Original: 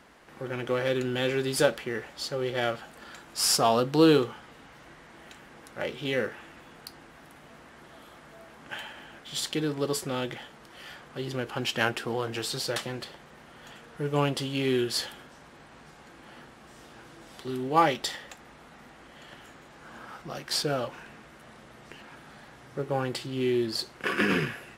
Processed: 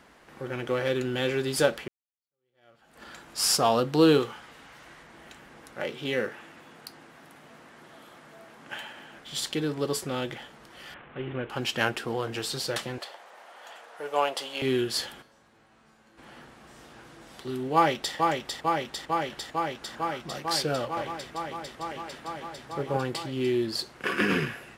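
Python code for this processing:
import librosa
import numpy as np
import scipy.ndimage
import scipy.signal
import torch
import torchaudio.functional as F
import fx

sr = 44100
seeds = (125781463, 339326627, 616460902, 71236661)

y = fx.tilt_shelf(x, sr, db=-3.5, hz=690.0, at=(4.2, 5.03))
y = fx.highpass(y, sr, hz=120.0, slope=12, at=(5.74, 9.17))
y = fx.cvsd(y, sr, bps=16000, at=(10.94, 11.5))
y = fx.highpass_res(y, sr, hz=670.0, q=2.0, at=(12.98, 14.62))
y = fx.comb_fb(y, sr, f0_hz=110.0, decay_s=0.55, harmonics='all', damping=0.0, mix_pct=80, at=(15.21, 16.17), fade=0.02)
y = fx.echo_throw(y, sr, start_s=17.74, length_s=0.41, ms=450, feedback_pct=85, wet_db=-3.5)
y = fx.echo_single(y, sr, ms=166, db=-4.0, at=(20.8, 22.97))
y = fx.edit(y, sr, fx.fade_in_span(start_s=1.88, length_s=1.14, curve='exp'), tone=tone)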